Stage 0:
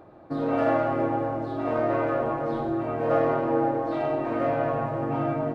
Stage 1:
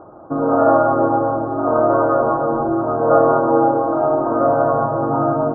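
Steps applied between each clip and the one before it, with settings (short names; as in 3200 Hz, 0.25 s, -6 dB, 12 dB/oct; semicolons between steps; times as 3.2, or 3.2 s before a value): EQ curve 140 Hz 0 dB, 1400 Hz +7 dB, 2000 Hz -28 dB; gain +5.5 dB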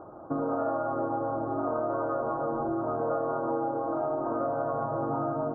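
compressor, threshold -22 dBFS, peak gain reduction 13 dB; gain -5 dB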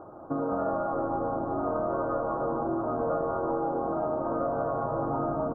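frequency-shifting echo 0.205 s, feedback 55%, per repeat -83 Hz, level -10 dB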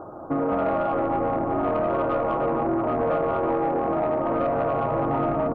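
soft clip -23 dBFS, distortion -19 dB; gain +7 dB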